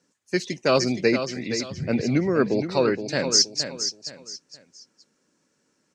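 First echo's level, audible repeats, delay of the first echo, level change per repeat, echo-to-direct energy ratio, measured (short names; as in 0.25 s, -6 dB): -9.0 dB, 3, 0.47 s, -10.5 dB, -8.5 dB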